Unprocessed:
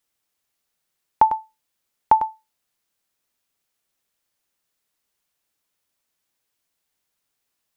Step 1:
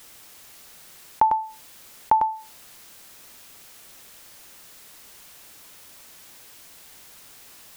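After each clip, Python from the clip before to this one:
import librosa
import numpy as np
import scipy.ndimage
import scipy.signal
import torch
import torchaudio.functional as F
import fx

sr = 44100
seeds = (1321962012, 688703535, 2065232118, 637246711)

y = fx.env_flatten(x, sr, amount_pct=50)
y = y * librosa.db_to_amplitude(-4.0)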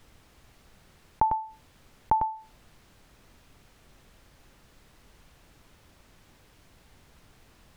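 y = fx.riaa(x, sr, side='playback')
y = y * librosa.db_to_amplitude(-6.0)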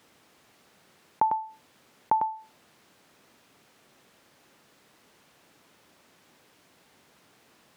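y = scipy.signal.sosfilt(scipy.signal.butter(2, 220.0, 'highpass', fs=sr, output='sos'), x)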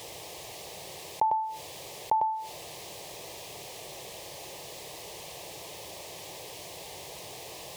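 y = fx.fixed_phaser(x, sr, hz=590.0, stages=4)
y = fx.env_flatten(y, sr, amount_pct=50)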